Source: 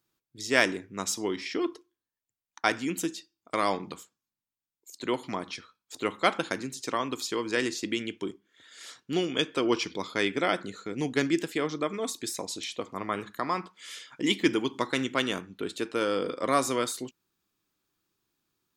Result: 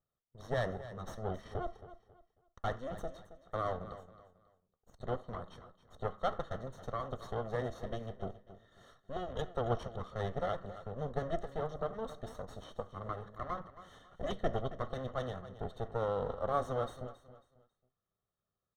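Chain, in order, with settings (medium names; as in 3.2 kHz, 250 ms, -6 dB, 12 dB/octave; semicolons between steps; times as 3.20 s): comb filter that takes the minimum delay 1.6 ms; boxcar filter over 18 samples; on a send: feedback delay 272 ms, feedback 30%, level -14.5 dB; on the sum: trim -3 dB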